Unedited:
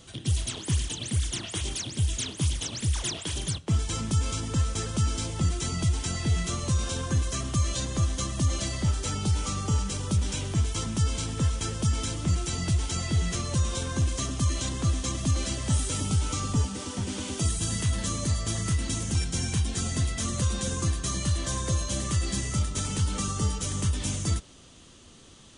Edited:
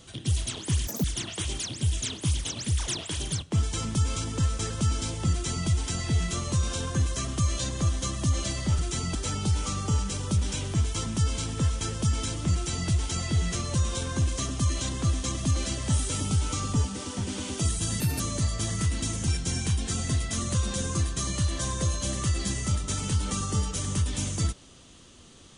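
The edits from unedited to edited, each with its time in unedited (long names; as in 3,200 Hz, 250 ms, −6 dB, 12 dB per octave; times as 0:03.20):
0:00.87–0:01.20: play speed 194%
0:05.48–0:05.84: duplicate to 0:08.95
0:17.80–0:18.07: play speed 136%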